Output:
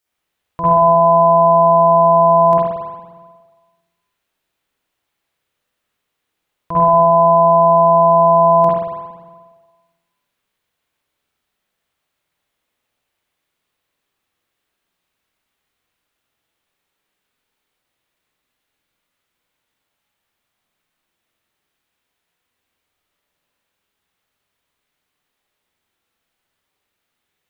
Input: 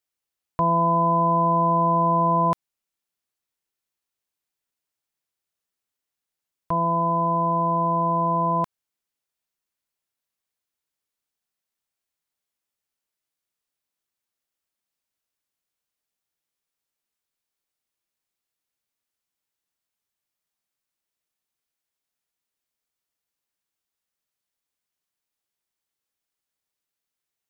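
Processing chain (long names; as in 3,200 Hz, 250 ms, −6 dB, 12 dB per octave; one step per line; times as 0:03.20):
brickwall limiter −21.5 dBFS, peak gain reduction 9 dB
spring reverb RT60 1.4 s, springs 46/58 ms, chirp 25 ms, DRR −9 dB
level +6.5 dB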